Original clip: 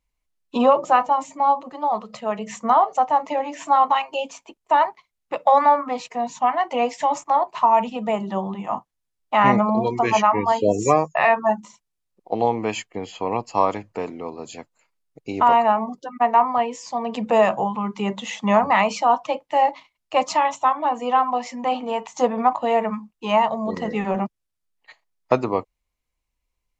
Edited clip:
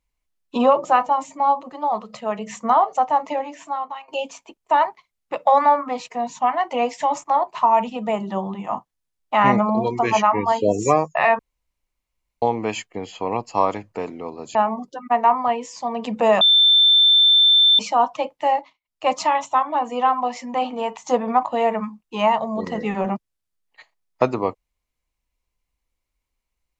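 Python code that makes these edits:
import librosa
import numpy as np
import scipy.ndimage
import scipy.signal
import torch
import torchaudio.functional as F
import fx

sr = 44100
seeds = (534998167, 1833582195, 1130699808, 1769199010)

y = fx.edit(x, sr, fx.fade_out_to(start_s=3.32, length_s=0.76, curve='qua', floor_db=-15.0),
    fx.room_tone_fill(start_s=11.39, length_s=1.03),
    fx.cut(start_s=14.55, length_s=1.1),
    fx.bleep(start_s=17.51, length_s=1.38, hz=3550.0, db=-10.5),
    fx.fade_down_up(start_s=19.56, length_s=0.64, db=-18.0, fade_s=0.3), tone=tone)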